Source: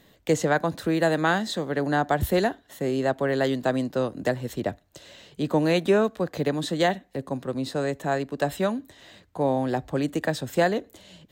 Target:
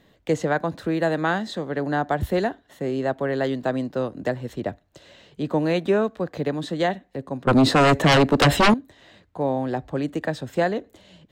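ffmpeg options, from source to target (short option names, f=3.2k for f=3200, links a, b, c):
-filter_complex "[0:a]lowpass=f=3.3k:p=1,asettb=1/sr,asplit=3[a][b][c];[a]atrim=end=7.474[d];[b]atrim=start=7.47:end=8.74,asetpts=PTS-STARTPTS,afade=t=in:d=0.004:c=qsin,afade=t=out:st=1.266:d=0.004:c=qsin,aeval=exprs='0.266*sin(PI/2*5.01*val(0)/0.266)':c=same[e];[c]atrim=start=8.736[f];[d][e]acrossfade=d=0.004:c1=hsin:c2=qsin[g];[g][f]acrossfade=d=0.004:c1=qsin:c2=hsin"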